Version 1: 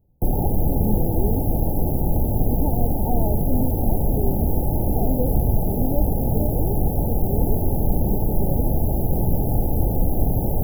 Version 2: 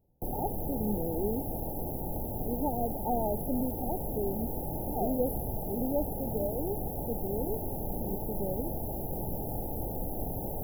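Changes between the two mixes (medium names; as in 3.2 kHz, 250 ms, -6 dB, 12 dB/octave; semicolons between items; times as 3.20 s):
background -7.5 dB; master: add bass shelf 250 Hz -11 dB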